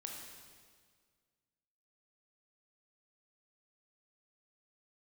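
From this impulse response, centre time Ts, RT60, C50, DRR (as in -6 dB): 71 ms, 1.8 s, 2.0 dB, 0.0 dB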